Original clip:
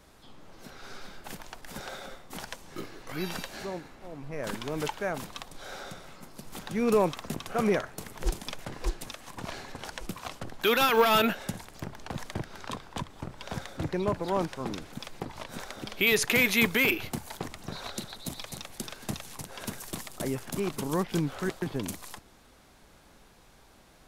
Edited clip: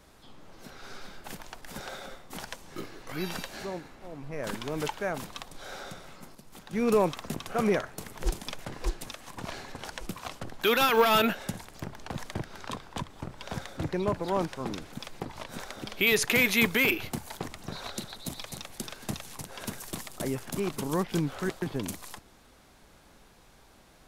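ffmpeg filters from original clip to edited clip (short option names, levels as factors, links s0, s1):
-filter_complex "[0:a]asplit=3[s0][s1][s2];[s0]atrim=end=6.352[s3];[s1]atrim=start=6.348:end=6.732,asetpts=PTS-STARTPTS,volume=0.422[s4];[s2]atrim=start=6.728[s5];[s3][s4]acrossfade=d=0.004:c1=hsin:c2=hsin[s6];[s6][s5]acrossfade=d=0.004:c1=hsin:c2=hsin"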